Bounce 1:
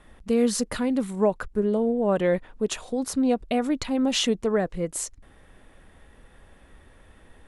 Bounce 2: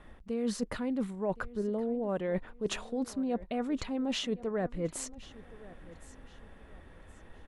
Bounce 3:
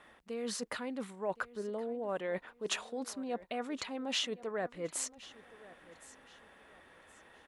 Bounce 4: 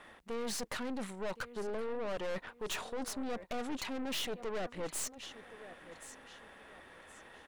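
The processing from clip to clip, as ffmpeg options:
-af "lowpass=f=2.9k:p=1,areverse,acompressor=threshold=-29dB:ratio=10,areverse,aecho=1:1:1069|2138|3207:0.112|0.0348|0.0108"
-af "highpass=f=880:p=1,volume=2.5dB"
-af "aeval=exprs='(tanh(141*val(0)+0.65)-tanh(0.65))/141':c=same,volume=7.5dB"

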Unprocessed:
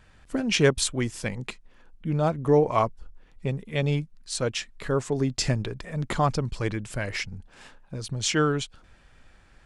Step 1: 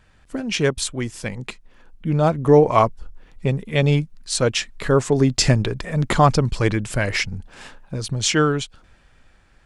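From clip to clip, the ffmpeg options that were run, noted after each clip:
-af "dynaudnorm=f=250:g=13:m=11.5dB"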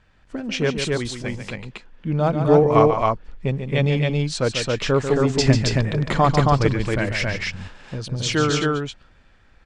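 -filter_complex "[0:a]lowpass=5.6k,asplit=2[a][b];[b]aecho=0:1:142.9|271.1:0.398|0.794[c];[a][c]amix=inputs=2:normalize=0,volume=-2.5dB"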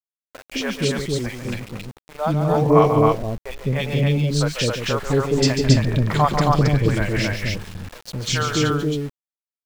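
-filter_complex "[0:a]acrossover=split=530|2100[a][b][c];[c]adelay=40[d];[a]adelay=210[e];[e][b][d]amix=inputs=3:normalize=0,aeval=exprs='val(0)*gte(abs(val(0)),0.015)':c=same,volume=1.5dB"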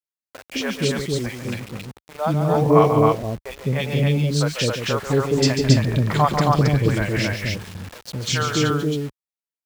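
-filter_complex "[0:a]asplit=2[a][b];[b]acrusher=bits=5:mix=0:aa=0.000001,volume=-6.5dB[c];[a][c]amix=inputs=2:normalize=0,highpass=51,volume=-3.5dB"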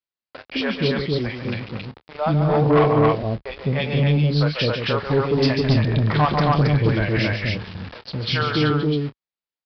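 -filter_complex "[0:a]aresample=11025,asoftclip=type=tanh:threshold=-13.5dB,aresample=44100,asplit=2[a][b];[b]adelay=27,volume=-13.5dB[c];[a][c]amix=inputs=2:normalize=0,volume=2dB"

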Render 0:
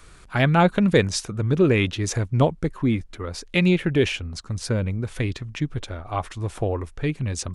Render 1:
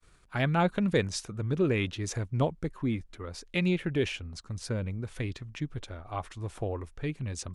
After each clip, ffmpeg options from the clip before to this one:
-af "agate=range=-33dB:threshold=-42dB:ratio=3:detection=peak,volume=-8.5dB"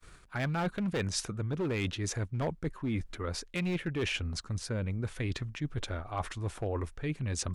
-af "volume=23.5dB,asoftclip=hard,volume=-23.5dB,equalizer=f=1.6k:t=o:w=0.77:g=2.5,areverse,acompressor=threshold=-37dB:ratio=6,areverse,volume=6.5dB"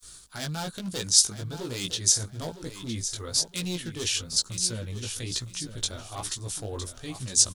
-af "flanger=delay=16:depth=3.8:speed=1.1,aexciter=amount=7.7:drive=6.2:freq=3.4k,aecho=1:1:960|1920|2880:0.282|0.0733|0.0191"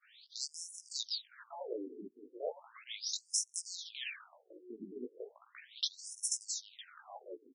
-af "acompressor=threshold=-29dB:ratio=8,afftfilt=real='re*between(b*sr/1024,300*pow(7600/300,0.5+0.5*sin(2*PI*0.36*pts/sr))/1.41,300*pow(7600/300,0.5+0.5*sin(2*PI*0.36*pts/sr))*1.41)':imag='im*between(b*sr/1024,300*pow(7600/300,0.5+0.5*sin(2*PI*0.36*pts/sr))/1.41,300*pow(7600/300,0.5+0.5*sin(2*PI*0.36*pts/sr))*1.41)':win_size=1024:overlap=0.75,volume=1.5dB"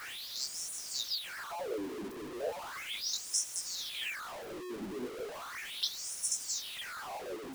-af "aeval=exprs='val(0)+0.5*0.0119*sgn(val(0))':c=same"

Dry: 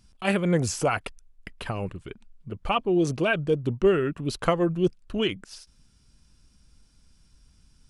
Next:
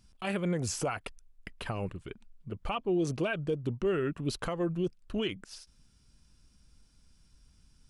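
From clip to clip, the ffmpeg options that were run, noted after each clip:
-af "alimiter=limit=-18.5dB:level=0:latency=1:release=181,volume=-3.5dB"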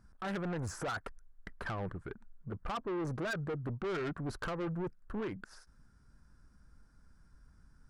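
-af "highshelf=f=2.1k:t=q:w=3:g=-10.5,asoftclip=type=tanh:threshold=-34.5dB,volume=1dB"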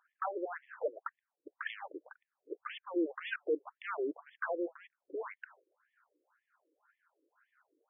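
-filter_complex "[0:a]acrossover=split=670[a][b];[a]aeval=exprs='val(0)*(1-0.5/2+0.5/2*cos(2*PI*1.4*n/s))':c=same[c];[b]aeval=exprs='val(0)*(1-0.5/2-0.5/2*cos(2*PI*1.4*n/s))':c=same[d];[c][d]amix=inputs=2:normalize=0,afftfilt=real='re*between(b*sr/1024,390*pow(2500/390,0.5+0.5*sin(2*PI*1.9*pts/sr))/1.41,390*pow(2500/390,0.5+0.5*sin(2*PI*1.9*pts/sr))*1.41)':imag='im*between(b*sr/1024,390*pow(2500/390,0.5+0.5*sin(2*PI*1.9*pts/sr))/1.41,390*pow(2500/390,0.5+0.5*sin(2*PI*1.9*pts/sr))*1.41)':win_size=1024:overlap=0.75,volume=8.5dB"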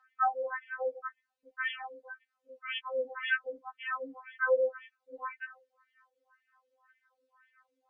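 -filter_complex "[0:a]acrossover=split=770[a][b];[b]crystalizer=i=3.5:c=0[c];[a][c]amix=inputs=2:normalize=0,highpass=370,lowpass=2.8k,afftfilt=real='re*3.46*eq(mod(b,12),0)':imag='im*3.46*eq(mod(b,12),0)':win_size=2048:overlap=0.75,volume=8dB"

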